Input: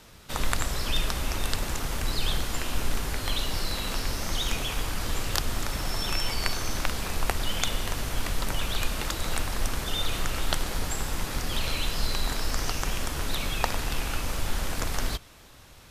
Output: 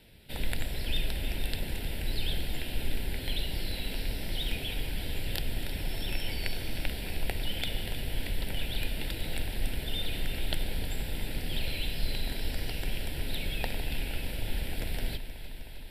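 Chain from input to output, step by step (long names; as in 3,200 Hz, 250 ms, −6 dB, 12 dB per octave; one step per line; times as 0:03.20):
phaser with its sweep stopped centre 2,800 Hz, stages 4
delay that swaps between a low-pass and a high-pass 156 ms, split 960 Hz, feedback 89%, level −12 dB
level −3.5 dB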